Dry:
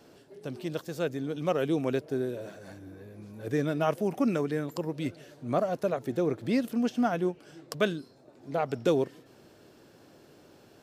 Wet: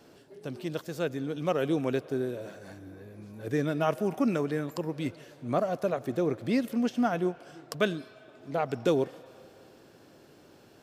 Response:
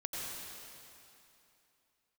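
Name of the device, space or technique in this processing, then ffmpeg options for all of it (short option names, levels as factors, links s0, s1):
filtered reverb send: -filter_complex "[0:a]asplit=2[s0][s1];[s1]highpass=f=510:w=0.5412,highpass=f=510:w=1.3066,lowpass=3700[s2];[1:a]atrim=start_sample=2205[s3];[s2][s3]afir=irnorm=-1:irlink=0,volume=0.126[s4];[s0][s4]amix=inputs=2:normalize=0"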